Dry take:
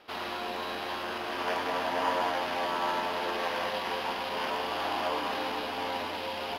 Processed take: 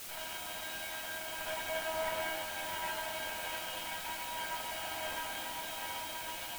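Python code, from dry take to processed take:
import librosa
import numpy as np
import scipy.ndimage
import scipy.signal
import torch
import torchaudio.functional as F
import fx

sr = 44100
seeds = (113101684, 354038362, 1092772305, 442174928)

p1 = fx.lower_of_two(x, sr, delay_ms=1.3)
p2 = scipy.signal.sosfilt(scipy.signal.butter(4, 3600.0, 'lowpass', fs=sr, output='sos'), p1)
p3 = fx.high_shelf(p2, sr, hz=2200.0, db=9.0)
p4 = fx.comb_fb(p3, sr, f0_hz=320.0, decay_s=0.35, harmonics='all', damping=0.0, mix_pct=90)
p5 = fx.quant_dither(p4, sr, seeds[0], bits=6, dither='triangular')
p6 = p4 + (p5 * 10.0 ** (-11.5 / 20.0))
y = p6 * 10.0 ** (2.0 / 20.0)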